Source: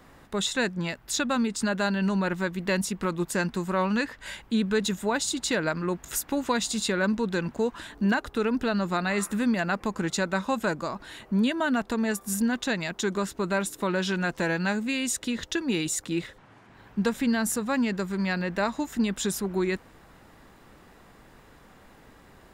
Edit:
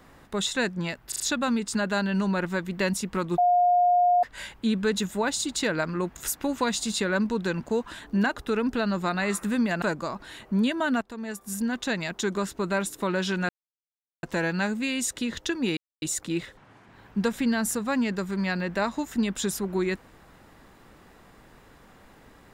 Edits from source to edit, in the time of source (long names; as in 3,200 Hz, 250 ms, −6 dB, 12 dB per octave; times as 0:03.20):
0:01.08: stutter 0.04 s, 4 plays
0:03.26–0:04.11: beep over 712 Hz −17 dBFS
0:09.70–0:10.62: remove
0:11.81–0:12.76: fade in, from −14.5 dB
0:14.29: splice in silence 0.74 s
0:15.83: splice in silence 0.25 s